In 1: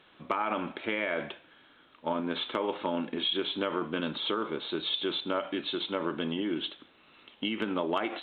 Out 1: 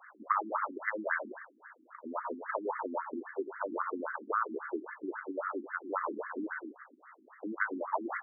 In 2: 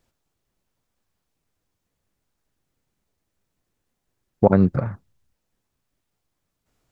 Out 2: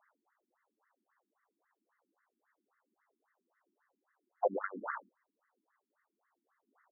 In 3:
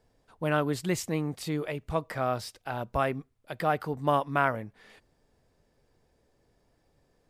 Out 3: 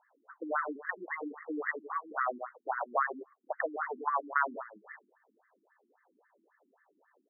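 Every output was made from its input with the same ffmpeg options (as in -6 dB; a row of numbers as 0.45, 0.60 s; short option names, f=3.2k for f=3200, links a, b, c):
-filter_complex "[0:a]bandreject=f=2.2k:w=6.6,aecho=1:1:112:0.316,acrossover=split=490|2400[a][b][c];[a]acompressor=threshold=-40dB:ratio=4[d];[b]acompressor=threshold=-36dB:ratio=4[e];[c]acompressor=threshold=-51dB:ratio=4[f];[d][e][f]amix=inputs=3:normalize=0,equalizer=f=125:t=o:w=1:g=-11,equalizer=f=1k:t=o:w=1:g=5,equalizer=f=2k:t=o:w=1:g=9,afftfilt=real='re*between(b*sr/1024,250*pow(1600/250,0.5+0.5*sin(2*PI*3.7*pts/sr))/1.41,250*pow(1600/250,0.5+0.5*sin(2*PI*3.7*pts/sr))*1.41)':imag='im*between(b*sr/1024,250*pow(1600/250,0.5+0.5*sin(2*PI*3.7*pts/sr))/1.41,250*pow(1600/250,0.5+0.5*sin(2*PI*3.7*pts/sr))*1.41)':win_size=1024:overlap=0.75,volume=4.5dB"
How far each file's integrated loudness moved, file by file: -4.5, -18.5, -4.5 LU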